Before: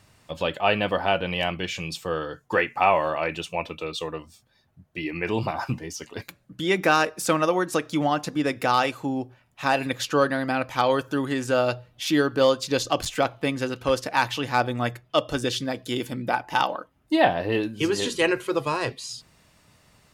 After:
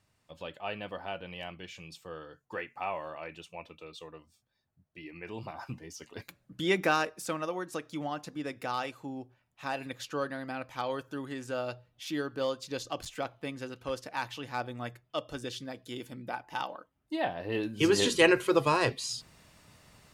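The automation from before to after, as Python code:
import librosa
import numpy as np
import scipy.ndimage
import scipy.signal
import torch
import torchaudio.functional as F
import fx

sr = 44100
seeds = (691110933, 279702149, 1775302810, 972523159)

y = fx.gain(x, sr, db=fx.line((5.34, -15.5), (6.68, -4.0), (7.34, -12.5), (17.35, -12.5), (17.9, 0.0)))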